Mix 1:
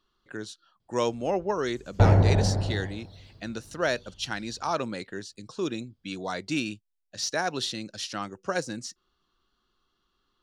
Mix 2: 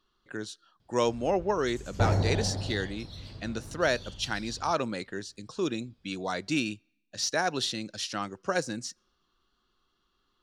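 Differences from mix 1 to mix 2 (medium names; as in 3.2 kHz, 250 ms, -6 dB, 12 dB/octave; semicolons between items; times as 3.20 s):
first sound +9.0 dB; second sound -7.0 dB; reverb: on, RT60 1.0 s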